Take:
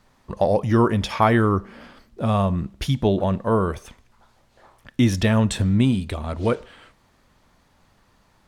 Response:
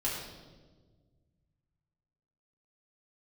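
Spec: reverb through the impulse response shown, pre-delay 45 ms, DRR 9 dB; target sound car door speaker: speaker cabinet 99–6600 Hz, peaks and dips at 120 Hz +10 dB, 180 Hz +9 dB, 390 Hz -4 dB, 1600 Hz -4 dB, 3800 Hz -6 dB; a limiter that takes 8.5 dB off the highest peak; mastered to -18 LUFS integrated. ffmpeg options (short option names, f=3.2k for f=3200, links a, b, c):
-filter_complex "[0:a]alimiter=limit=-12.5dB:level=0:latency=1,asplit=2[a][b];[1:a]atrim=start_sample=2205,adelay=45[c];[b][c]afir=irnorm=-1:irlink=0,volume=-14.5dB[d];[a][d]amix=inputs=2:normalize=0,highpass=99,equalizer=f=120:t=q:w=4:g=10,equalizer=f=180:t=q:w=4:g=9,equalizer=f=390:t=q:w=4:g=-4,equalizer=f=1.6k:t=q:w=4:g=-4,equalizer=f=3.8k:t=q:w=4:g=-6,lowpass=f=6.6k:w=0.5412,lowpass=f=6.6k:w=1.3066,volume=1.5dB"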